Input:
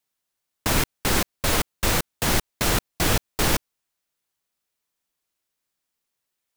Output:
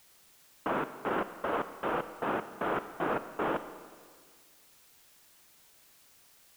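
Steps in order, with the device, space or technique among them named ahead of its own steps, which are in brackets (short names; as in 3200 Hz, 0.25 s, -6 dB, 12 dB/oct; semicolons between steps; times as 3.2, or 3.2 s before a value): elliptic band-pass 130–1400 Hz, stop band 40 dB; army field radio (BPF 310–3100 Hz; CVSD 16 kbps; white noise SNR 24 dB); Schroeder reverb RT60 1.8 s, combs from 28 ms, DRR 11 dB; gain -2.5 dB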